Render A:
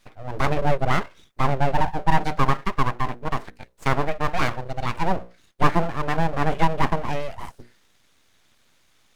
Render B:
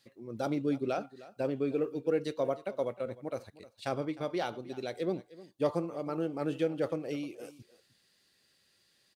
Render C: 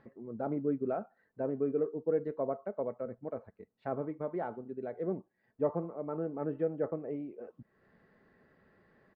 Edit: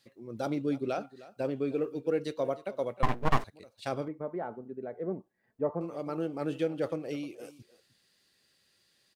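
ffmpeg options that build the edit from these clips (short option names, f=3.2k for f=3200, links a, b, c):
-filter_complex "[1:a]asplit=3[a][b][c];[a]atrim=end=3.032[d];[0:a]atrim=start=3.028:end=3.442[e];[b]atrim=start=3.438:end=4.082[f];[2:a]atrim=start=4.078:end=5.812[g];[c]atrim=start=5.808[h];[d][e]acrossfade=d=0.004:c1=hsin:c2=hsin[i];[i][f]acrossfade=d=0.004:c1=hsin:c2=hsin[j];[j][g]acrossfade=d=0.004:c1=hsin:c2=hsin[k];[k][h]acrossfade=d=0.004:c1=hsin:c2=hsin"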